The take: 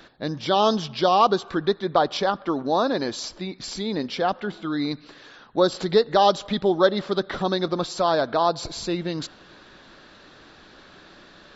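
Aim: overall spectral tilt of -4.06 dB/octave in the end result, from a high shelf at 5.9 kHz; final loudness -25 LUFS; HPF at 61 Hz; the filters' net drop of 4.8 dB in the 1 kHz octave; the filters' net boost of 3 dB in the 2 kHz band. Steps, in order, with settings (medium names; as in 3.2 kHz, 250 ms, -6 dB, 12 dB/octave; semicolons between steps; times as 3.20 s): high-pass 61 Hz; peaking EQ 1 kHz -8.5 dB; peaking EQ 2 kHz +7 dB; treble shelf 5.9 kHz +6.5 dB; trim -0.5 dB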